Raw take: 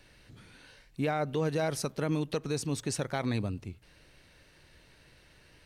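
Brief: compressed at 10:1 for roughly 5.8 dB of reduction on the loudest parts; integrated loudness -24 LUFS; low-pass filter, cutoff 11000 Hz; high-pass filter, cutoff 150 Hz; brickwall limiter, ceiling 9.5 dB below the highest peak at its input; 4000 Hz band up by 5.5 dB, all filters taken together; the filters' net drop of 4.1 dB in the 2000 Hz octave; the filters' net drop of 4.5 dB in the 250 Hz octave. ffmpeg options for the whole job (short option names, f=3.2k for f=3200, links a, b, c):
-af "highpass=150,lowpass=11k,equalizer=f=250:t=o:g=-5,equalizer=f=2k:t=o:g=-8,equalizer=f=4k:t=o:g=8.5,acompressor=threshold=-33dB:ratio=10,volume=19.5dB,alimiter=limit=-12.5dB:level=0:latency=1"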